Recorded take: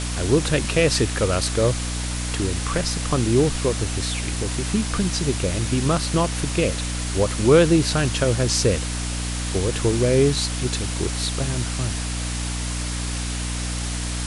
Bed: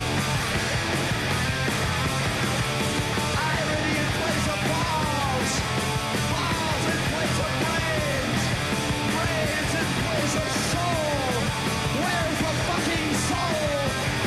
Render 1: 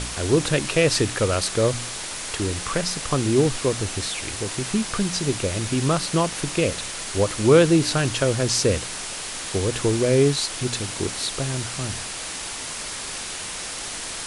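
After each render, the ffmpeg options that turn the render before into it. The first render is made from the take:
-af "bandreject=f=60:t=h:w=4,bandreject=f=120:t=h:w=4,bandreject=f=180:t=h:w=4,bandreject=f=240:t=h:w=4,bandreject=f=300:t=h:w=4"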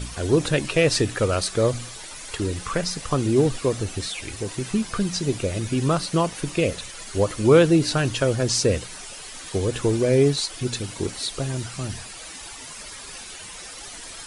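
-af "afftdn=nr=11:nf=-32"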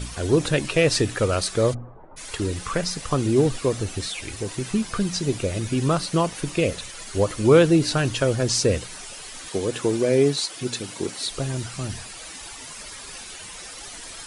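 -filter_complex "[0:a]asplit=3[a][b][c];[a]afade=t=out:st=1.73:d=0.02[d];[b]lowpass=f=1k:w=0.5412,lowpass=f=1k:w=1.3066,afade=t=in:st=1.73:d=0.02,afade=t=out:st=2.16:d=0.02[e];[c]afade=t=in:st=2.16:d=0.02[f];[d][e][f]amix=inputs=3:normalize=0,asettb=1/sr,asplit=3[g][h][i];[g]atrim=end=9.484[j];[h]atrim=start=9.48:end=11.26,asetpts=PTS-STARTPTS,afade=t=in:d=0.004:c=qsin,afade=t=out:st=1.776:d=0.004:c=qsin,highpass=160[k];[i]atrim=start=11.256[l];[j][k]acrossfade=d=0.004:c1=hsin:c2=qsin[m];[m][l]acrossfade=d=0.004:c1=qsin:c2=hsin"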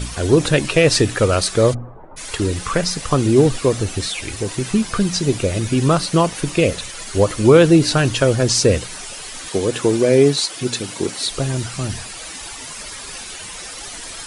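-af "volume=6dB,alimiter=limit=-2dB:level=0:latency=1"

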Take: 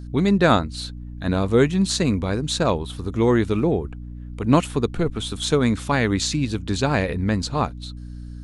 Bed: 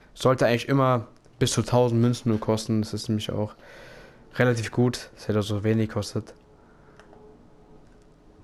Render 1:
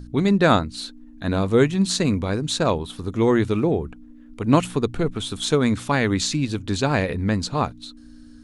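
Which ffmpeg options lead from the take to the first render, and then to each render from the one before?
-af "bandreject=f=60:t=h:w=4,bandreject=f=120:t=h:w=4,bandreject=f=180:t=h:w=4"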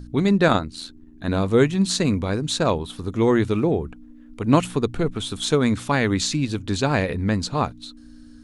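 -filter_complex "[0:a]asettb=1/sr,asplit=3[a][b][c];[a]atrim=end=0.484[d];[b]atrim=start=0.48:end=1.28,asetpts=PTS-STARTPTS,afade=t=in:d=0.004:c=qsin,afade=t=out:st=0.796:d=0.004:c=qsin,tremolo=f=83:d=0.621[e];[c]atrim=start=1.276[f];[d][e]acrossfade=d=0.004:c1=hsin:c2=qsin[g];[g][f]acrossfade=d=0.004:c1=qsin:c2=hsin"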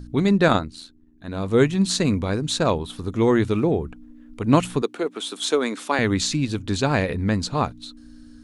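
-filter_complex "[0:a]asettb=1/sr,asplit=3[a][b][c];[a]atrim=end=4.824[d];[b]atrim=start=4.82:end=5.99,asetpts=PTS-STARTPTS,afade=t=in:d=0.004:c=qsin,afade=t=out:st=1.166:d=0.004:c=qsin,highpass=f=290:w=0.5412,highpass=f=290:w=1.3066[e];[c]atrim=start=5.986[f];[d][e]acrossfade=d=0.004:c1=hsin:c2=qsin[g];[g][f]acrossfade=d=0.004:c1=qsin:c2=hsin,asplit=3[h][i][j];[h]atrim=end=0.89,asetpts=PTS-STARTPTS,afade=t=out:st=0.6:d=0.29:silence=0.354813[k];[i]atrim=start=0.89:end=1.32,asetpts=PTS-STARTPTS,volume=-9dB[l];[j]atrim=start=1.32,asetpts=PTS-STARTPTS,afade=t=in:d=0.29:silence=0.354813[m];[k][l][m]concat=n=3:v=0:a=1"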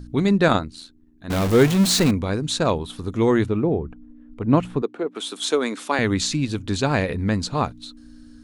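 -filter_complex "[0:a]asettb=1/sr,asplit=3[a][b][c];[a]atrim=end=1.304[d];[b]atrim=start=1.3:end=2.11,asetpts=PTS-STARTPTS,afade=t=in:d=0.004:c=qsin,afade=t=out:st=0.806:d=0.004:c=qsin,aeval=exprs='val(0)+0.5*0.106*sgn(val(0))':c=same[e];[c]atrim=start=2.106[f];[d][e]acrossfade=d=0.004:c1=hsin:c2=qsin[g];[g][f]acrossfade=d=0.004:c1=qsin:c2=hsin,asettb=1/sr,asplit=3[h][i][j];[h]atrim=end=3.464[k];[i]atrim=start=3.46:end=5.15,asetpts=PTS-STARTPTS,afade=t=in:d=0.004:c=qsin,afade=t=out:st=1.686:d=0.004:c=qsin,lowpass=f=1.1k:p=1[l];[j]atrim=start=5.146[m];[k][l]acrossfade=d=0.004:c1=hsin:c2=qsin[n];[n][m]acrossfade=d=0.004:c1=qsin:c2=hsin"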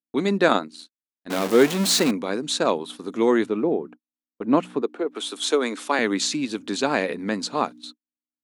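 -af "highpass=f=230:w=0.5412,highpass=f=230:w=1.3066,agate=range=-55dB:threshold=-39dB:ratio=16:detection=peak"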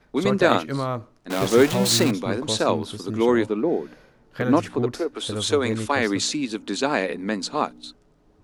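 -filter_complex "[1:a]volume=-5.5dB[a];[0:a][a]amix=inputs=2:normalize=0"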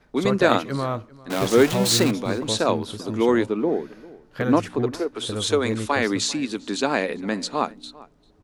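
-filter_complex "[0:a]asplit=2[a][b];[b]adelay=396.5,volume=-21dB,highshelf=f=4k:g=-8.92[c];[a][c]amix=inputs=2:normalize=0"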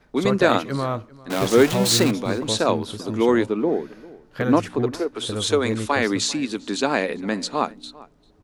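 -af "volume=1dB,alimiter=limit=-3dB:level=0:latency=1"

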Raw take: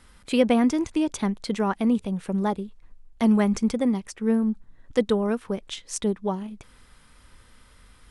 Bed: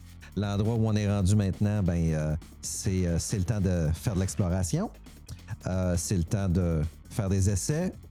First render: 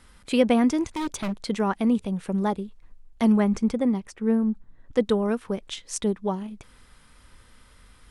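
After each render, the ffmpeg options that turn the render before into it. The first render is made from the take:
-filter_complex "[0:a]asettb=1/sr,asplit=3[a][b][c];[a]atrim=end=0.914[d];[b]atrim=start=0.91:end=1.38,asetpts=PTS-STARTPTS,afade=t=in:d=0.004:c=qsin,afade=t=out:st=0.466:d=0.004:c=qsin,aeval=exprs='0.075*(abs(mod(val(0)/0.075+3,4)-2)-1)':c=same[e];[c]atrim=start=1.376[f];[d][e]acrossfade=d=0.004:c1=hsin:c2=qsin[g];[g][f]acrossfade=d=0.004:c1=qsin:c2=hsin,asettb=1/sr,asplit=3[h][i][j];[h]atrim=end=3.324[k];[i]atrim=start=3.32:end=5.03,asetpts=PTS-STARTPTS,afade=t=in:d=0.004:c=qsin,afade=t=out:st=1.706:d=0.004:c=qsin,highshelf=f=2.6k:g=-7[l];[j]atrim=start=5.026[m];[k][l]acrossfade=d=0.004:c1=hsin:c2=qsin[n];[n][m]acrossfade=d=0.004:c1=qsin:c2=hsin"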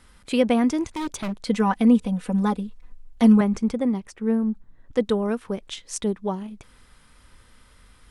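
-filter_complex "[0:a]asettb=1/sr,asplit=3[a][b][c];[a]atrim=end=1.464[d];[b]atrim=start=1.46:end=3.41,asetpts=PTS-STARTPTS,afade=t=in:d=0.004:c=qsin,afade=t=out:st=1.946:d=0.004:c=qsin,aecho=1:1:4:0.97,atrim=end_sample=85995[e];[c]atrim=start=3.406[f];[d][e]acrossfade=d=0.004:c1=hsin:c2=qsin[g];[g][f]acrossfade=d=0.004:c1=qsin:c2=hsin"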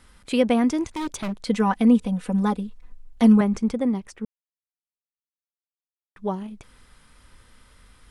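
-filter_complex "[0:a]asplit=3[a][b][c];[a]atrim=end=4.25,asetpts=PTS-STARTPTS,afade=t=out:st=4.246:d=0.004:c=hsin[d];[b]atrim=start=4.25:end=6.16,asetpts=PTS-STARTPTS,volume=0[e];[c]atrim=start=6.16,asetpts=PTS-STARTPTS,afade=t=in:d=0.004:c=hsin[f];[d][e][f]concat=n=3:v=0:a=1"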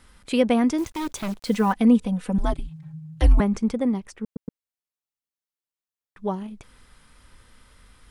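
-filter_complex "[0:a]asettb=1/sr,asplit=3[a][b][c];[a]atrim=end=0.784[d];[b]atrim=start=0.78:end=1.73,asetpts=PTS-STARTPTS,afade=t=in:d=0.004:c=qsin,afade=t=out:st=0.946:d=0.004:c=qsin,acrusher=bits=8:dc=4:mix=0:aa=0.000001[e];[c]atrim=start=1.726[f];[d][e]acrossfade=d=0.004:c1=hsin:c2=qsin[g];[g][f]acrossfade=d=0.004:c1=qsin:c2=hsin,asettb=1/sr,asplit=3[h][i][j];[h]atrim=end=2.384[k];[i]atrim=start=2.38:end=3.4,asetpts=PTS-STARTPTS,afade=t=in:d=0.004:c=qsin,afade=t=out:st=1.016:d=0.004:c=qsin,afreqshift=-170[l];[j]atrim=start=3.396[m];[k][l]acrossfade=d=0.004:c1=hsin:c2=qsin[n];[n][m]acrossfade=d=0.004:c1=qsin:c2=hsin,asplit=4[o][p][q][r];[o]atrim=end=4.362[s];[p]atrim=start=4.238:end=4.362[t];[q]atrim=start=4.238:end=4.362[u];[r]atrim=start=4.598[v];[s][t]acrossfade=d=0.004:c1=hsin:c2=hsin[w];[w][u]acrossfade=d=0.004:c1=hsin:c2=hsin[x];[x][v]acrossfade=d=0.004:c1=hsin:c2=hsin"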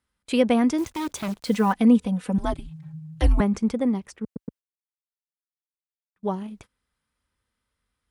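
-af "highpass=49,agate=range=-24dB:threshold=-46dB:ratio=16:detection=peak"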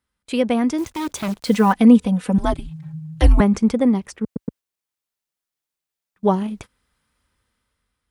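-af "dynaudnorm=f=300:g=7:m=10dB"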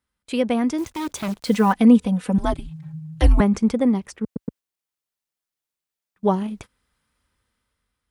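-af "volume=-2dB"

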